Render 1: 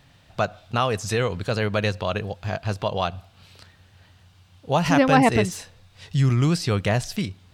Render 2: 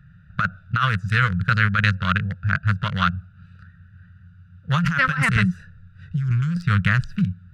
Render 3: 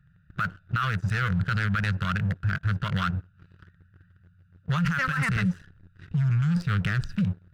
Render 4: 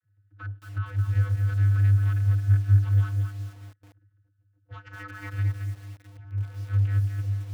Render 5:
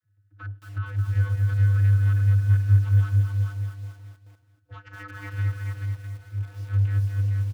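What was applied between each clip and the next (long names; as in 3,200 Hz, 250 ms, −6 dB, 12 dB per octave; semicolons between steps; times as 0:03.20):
adaptive Wiener filter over 41 samples; drawn EQ curve 120 Hz 0 dB, 180 Hz +5 dB, 290 Hz −28 dB, 510 Hz −18 dB, 790 Hz −22 dB, 1,400 Hz +14 dB, 2,300 Hz +1 dB, 5,700 Hz −4 dB; compressor whose output falls as the input rises −23 dBFS, ratio −1; level +4.5 dB
leveller curve on the samples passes 2; brickwall limiter −11.5 dBFS, peak gain reduction 9.5 dB; level −7 dB
channel vocoder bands 32, square 100 Hz; feedback echo at a low word length 220 ms, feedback 35%, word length 8 bits, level −6 dB
repeating echo 432 ms, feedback 18%, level −4.5 dB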